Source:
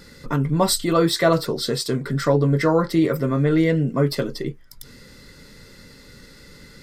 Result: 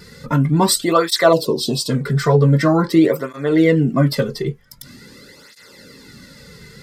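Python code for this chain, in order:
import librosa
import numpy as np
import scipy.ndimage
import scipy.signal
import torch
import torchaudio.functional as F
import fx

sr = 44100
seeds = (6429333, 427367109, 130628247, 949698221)

y = fx.spec_box(x, sr, start_s=1.33, length_s=0.57, low_hz=1100.0, high_hz=2500.0, gain_db=-26)
y = fx.flanger_cancel(y, sr, hz=0.45, depth_ms=3.7)
y = y * librosa.db_to_amplitude(7.0)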